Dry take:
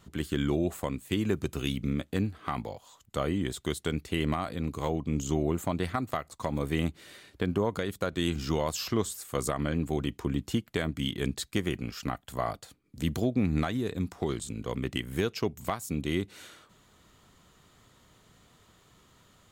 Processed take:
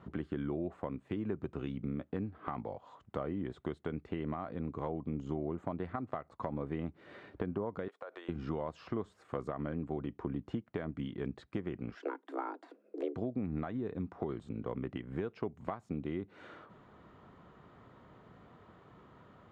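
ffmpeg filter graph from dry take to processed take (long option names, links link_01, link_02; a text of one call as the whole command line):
ffmpeg -i in.wav -filter_complex "[0:a]asettb=1/sr,asplit=3[link_01][link_02][link_03];[link_01]atrim=end=7.884[link_04];[link_02]atrim=start=7.88:end=8.29,asetpts=PTS-STARTPTS,afade=type=in:duration=0.004:curve=qsin,afade=type=out:start_time=0.406:duration=0.004:curve=qsin,highpass=frequency=490:width=0.5412,highpass=frequency=490:width=1.3066,acompressor=threshold=-42dB:ratio=5:attack=3.2:release=140:knee=1:detection=peak[link_05];[link_03]atrim=start=8.286[link_06];[link_04][link_05]acrossfade=duration=0.004:curve1=hsin:curve2=qsin[link_07];[link_07][link_06]acrossfade=duration=0.004:curve1=qsin:curve2=hsin,asettb=1/sr,asplit=3[link_08][link_09][link_10];[link_08]atrim=end=11.954[link_11];[link_09]atrim=start=11.95:end=13.16,asetpts=PTS-STARTPTS,afade=type=in:duration=0.004:curve=qsin,afade=type=out:start_time=1.206:duration=0.004:curve=qsin,bandreject=frequency=660:width=8.8,afreqshift=210[link_12];[link_10]atrim=start=13.156[link_13];[link_11][link_12]acrossfade=duration=0.004:curve1=hsin:curve2=qsin[link_14];[link_14][link_13]acrossfade=duration=0.004:curve1=qsin:curve2=hsin,highpass=frequency=140:poles=1,acompressor=threshold=-44dB:ratio=3,lowpass=1300,volume=6.5dB" out.wav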